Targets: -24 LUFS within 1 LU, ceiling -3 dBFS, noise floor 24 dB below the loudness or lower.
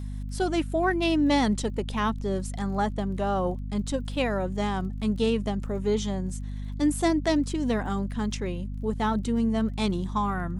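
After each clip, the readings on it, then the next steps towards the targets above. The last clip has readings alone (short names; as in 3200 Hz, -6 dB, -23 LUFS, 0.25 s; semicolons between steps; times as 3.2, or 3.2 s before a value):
ticks 25/s; hum 50 Hz; harmonics up to 250 Hz; hum level -31 dBFS; loudness -27.5 LUFS; peak -11.5 dBFS; loudness target -24.0 LUFS
-> de-click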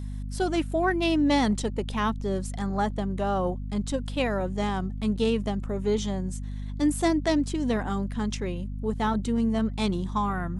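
ticks 0/s; hum 50 Hz; harmonics up to 250 Hz; hum level -31 dBFS
-> notches 50/100/150/200/250 Hz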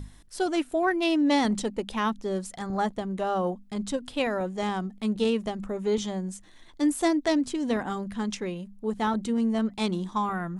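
hum none; loudness -28.0 LUFS; peak -12.5 dBFS; loudness target -24.0 LUFS
-> gain +4 dB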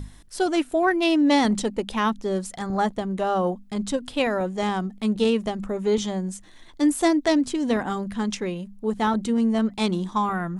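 loudness -24.0 LUFS; peak -8.5 dBFS; noise floor -48 dBFS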